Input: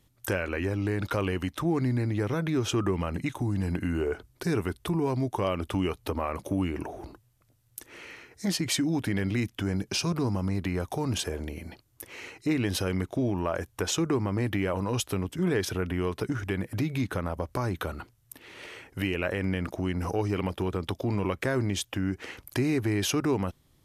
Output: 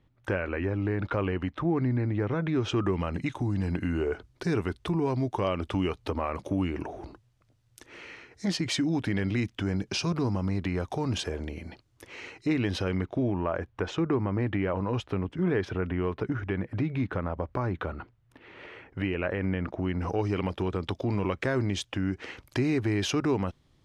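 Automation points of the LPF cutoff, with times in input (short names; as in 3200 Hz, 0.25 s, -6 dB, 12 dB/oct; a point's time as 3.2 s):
2.3 s 2300 Hz
2.99 s 5600 Hz
12.42 s 5600 Hz
13.44 s 2300 Hz
19.77 s 2300 Hz
20.3 s 5500 Hz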